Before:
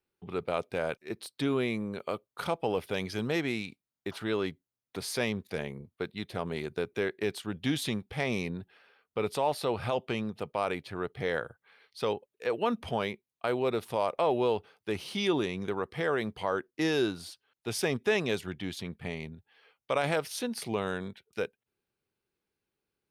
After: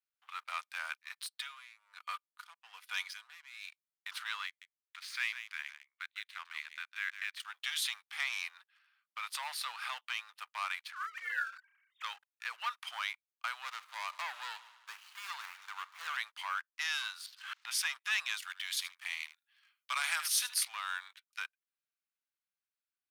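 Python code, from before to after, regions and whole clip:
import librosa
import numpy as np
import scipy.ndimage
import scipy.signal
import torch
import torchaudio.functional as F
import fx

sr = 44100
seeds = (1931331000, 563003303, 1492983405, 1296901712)

y = fx.chain(x, sr, fx.comb(ms=4.1, depth=0.41),
    fx.tremolo_db(hz=1.2, depth_db=20), at=(1.31, 3.67))
y = fx.chain(y, sr, fx.bandpass_q(hz=2100.0, q=1.2),
    fx.echo_single(ms=154, db=-10.5), at=(4.46, 7.4))
y = fx.chain(y, sr, fx.sine_speech(),
    fx.doubler(ms=31.0, db=-2.0),
    fx.sustainer(db_per_s=110.0), at=(10.93, 12.04))
y = fx.chain(y, sr, fx.median_filter(points=25),
    fx.echo_heads(ms=76, heads='first and second', feedback_pct=60, wet_db=-21.5), at=(13.62, 16.17))
y = fx.chain(y, sr, fx.air_absorb(metres=170.0),
    fx.pre_swell(db_per_s=63.0), at=(17.26, 17.71))
y = fx.chain(y, sr, fx.highpass(hz=380.0, slope=12),
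    fx.high_shelf(hz=4200.0, db=9.5),
    fx.echo_single(ms=77, db=-14.5), at=(18.42, 20.65))
y = fx.leveller(y, sr, passes=2)
y = scipy.signal.sosfilt(scipy.signal.butter(6, 1100.0, 'highpass', fs=sr, output='sos'), y)
y = y * librosa.db_to_amplitude(-5.5)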